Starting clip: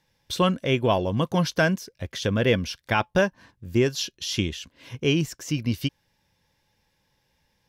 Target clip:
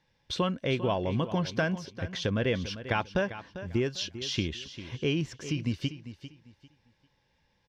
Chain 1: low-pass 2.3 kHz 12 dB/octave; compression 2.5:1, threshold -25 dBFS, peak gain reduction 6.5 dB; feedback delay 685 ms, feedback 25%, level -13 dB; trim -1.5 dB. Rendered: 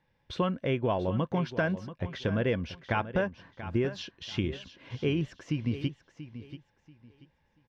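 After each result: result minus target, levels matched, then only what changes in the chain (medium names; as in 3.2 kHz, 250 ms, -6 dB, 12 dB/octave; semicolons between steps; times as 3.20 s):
echo 288 ms late; 4 kHz band -6.0 dB
change: feedback delay 397 ms, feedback 25%, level -13 dB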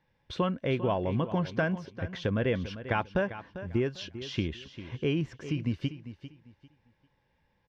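4 kHz band -6.0 dB
change: low-pass 4.7 kHz 12 dB/octave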